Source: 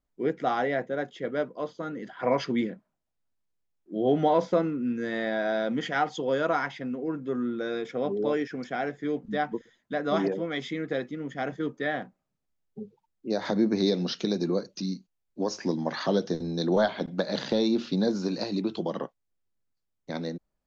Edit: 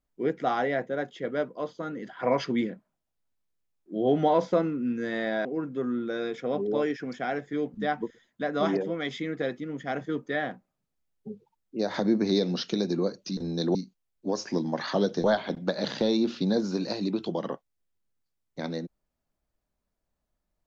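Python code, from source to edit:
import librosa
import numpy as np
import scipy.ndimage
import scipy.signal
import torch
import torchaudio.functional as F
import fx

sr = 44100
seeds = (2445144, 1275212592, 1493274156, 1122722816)

y = fx.edit(x, sr, fx.cut(start_s=5.45, length_s=1.51),
    fx.move(start_s=16.37, length_s=0.38, to_s=14.88), tone=tone)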